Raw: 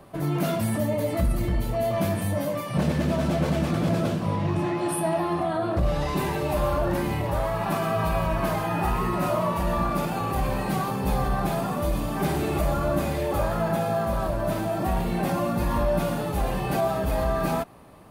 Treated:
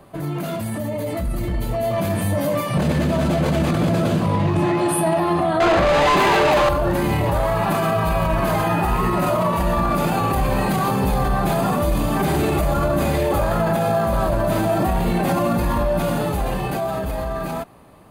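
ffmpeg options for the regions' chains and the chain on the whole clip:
-filter_complex "[0:a]asettb=1/sr,asplit=3[a][b][c];[a]atrim=end=5.604[d];[b]atrim=start=5.6:end=6.69,asetpts=PTS-STARTPTS,afade=t=in:d=0.004:c=qsin,afade=t=out:st=1.086:d=0.004:c=qsin,bass=f=250:g=-4,treble=f=4k:g=-9,acontrast=86,asplit=2[e][f];[f]highpass=f=720:p=1,volume=27dB,asoftclip=type=tanh:threshold=-9dB[g];[e][g]amix=inputs=2:normalize=0,lowpass=f=4.2k:p=1,volume=-6dB[h];[c]atrim=start=6.686[i];[d][h]acrossfade=d=0.004:c1=hsin:c2=qsin[j];[j][i]acrossfade=d=0.004:c1=qsin:c2=hsin,alimiter=limit=-20.5dB:level=0:latency=1:release=20,bandreject=f=5.5k:w=10,dynaudnorm=f=230:g=17:m=7dB,volume=2dB"

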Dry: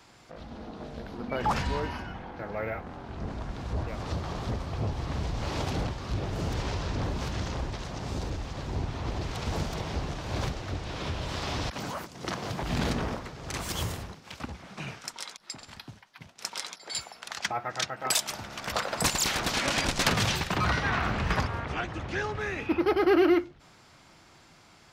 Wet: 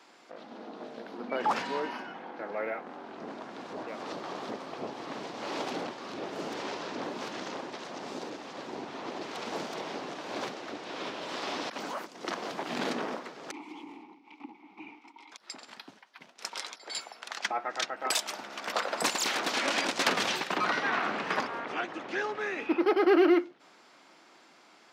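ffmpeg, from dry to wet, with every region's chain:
-filter_complex "[0:a]asettb=1/sr,asplit=3[a][b][c];[a]atrim=end=13.514[d];[b]atrim=start=13.51:end=15.32,asetpts=PTS-STARTPTS,afade=t=in:d=0.004:c=qsin,afade=t=out:st=1.806:d=0.004:c=qsin,asoftclip=type=hard:threshold=-31dB,acontrast=67,asplit=3[e][f][g];[e]bandpass=f=300:t=q:w=8,volume=0dB[h];[f]bandpass=f=870:t=q:w=8,volume=-6dB[i];[g]bandpass=f=2.24k:t=q:w=8,volume=-9dB[j];[h][i][j]amix=inputs=3:normalize=0[k];[c]atrim=start=15.316[l];[d][k]acrossfade=d=0.004:c1=hsin:c2=qsin[m];[m][l]acrossfade=d=0.004:c1=qsin:c2=hsin,highpass=f=250:w=0.5412,highpass=f=250:w=1.3066,highshelf=f=7k:g=-9"

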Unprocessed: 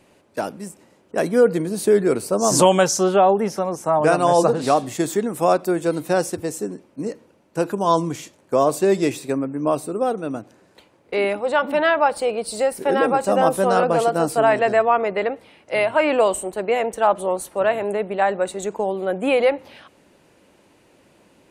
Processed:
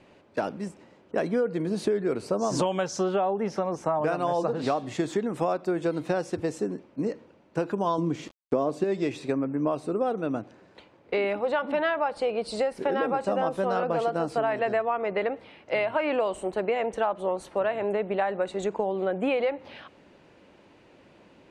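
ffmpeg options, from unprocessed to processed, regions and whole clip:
-filter_complex "[0:a]asettb=1/sr,asplit=3[a][b][c];[a]atrim=end=7.984[d];[b]atrim=start=7.98:end=8.84,asetpts=PTS-STARTPTS,afade=t=in:d=0.004:c=qsin,afade=t=out:st=0.856:d=0.004:c=qsin,equalizer=f=260:t=o:w=2:g=8,aeval=exprs='val(0)*gte(abs(val(0)),0.00794)':c=same[e];[c]atrim=start=8.836[f];[d][e]acrossfade=d=0.004:c1=hsin:c2=qsin[g];[g][f]acrossfade=d=0.004:c1=qsin:c2=hsin,lowpass=4.2k,acompressor=threshold=-23dB:ratio=6"

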